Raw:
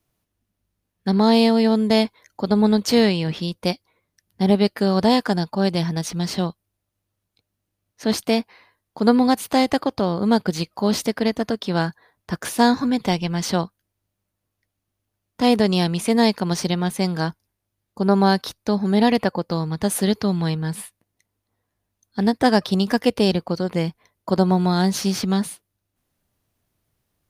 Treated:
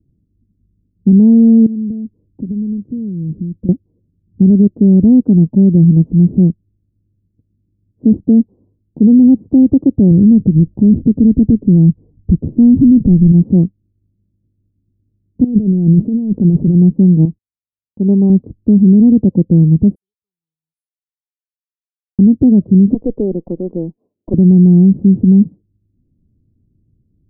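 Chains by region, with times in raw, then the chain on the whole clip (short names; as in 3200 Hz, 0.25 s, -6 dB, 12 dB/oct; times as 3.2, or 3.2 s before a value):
1.66–3.69 bell 790 Hz -8 dB 1.9 oct + compressor, threshold -34 dBFS
10.11–13.32 tilt -3 dB/oct + compressor 2:1, threshold -19 dBFS
15.44–16.75 notch 1000 Hz, Q 13 + negative-ratio compressor -27 dBFS
17.25–18.3 gate -52 dBFS, range -36 dB + low shelf 460 Hz -10.5 dB
19.95–22.19 inverse Chebyshev high-pass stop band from 640 Hz, stop band 80 dB + comb 2.3 ms, depth 50%
22.94–24.34 HPF 460 Hz + bell 1100 Hz +7 dB 2.2 oct + tube stage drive 10 dB, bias 0.25
whole clip: inverse Chebyshev low-pass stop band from 1800 Hz, stop band 80 dB; maximiser +18.5 dB; gain -1 dB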